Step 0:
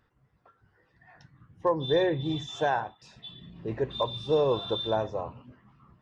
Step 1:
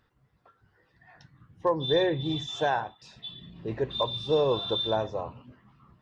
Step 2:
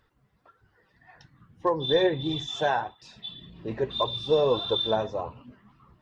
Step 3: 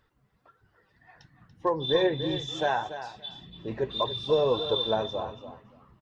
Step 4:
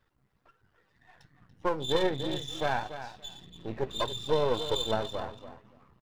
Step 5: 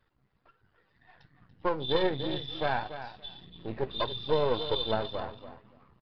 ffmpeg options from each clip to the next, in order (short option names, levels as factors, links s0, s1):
-af "equalizer=f=3900:w=1.5:g=4.5"
-af "flanger=delay=1.8:depth=3.6:regen=47:speed=1.7:shape=triangular,volume=1.88"
-af "aecho=1:1:287|574:0.266|0.0452,volume=0.841"
-af "aeval=exprs='if(lt(val(0),0),0.251*val(0),val(0))':c=same"
-af "aresample=11025,aresample=44100"